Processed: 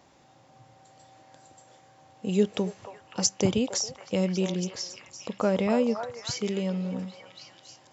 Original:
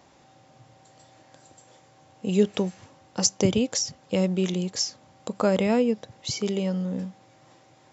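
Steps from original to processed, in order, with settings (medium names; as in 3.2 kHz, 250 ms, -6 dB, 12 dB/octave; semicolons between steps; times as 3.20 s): 4.51–5.70 s: distance through air 110 m; on a send: repeats whose band climbs or falls 276 ms, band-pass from 860 Hz, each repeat 0.7 oct, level -3 dB; on the sum: trim -2.5 dB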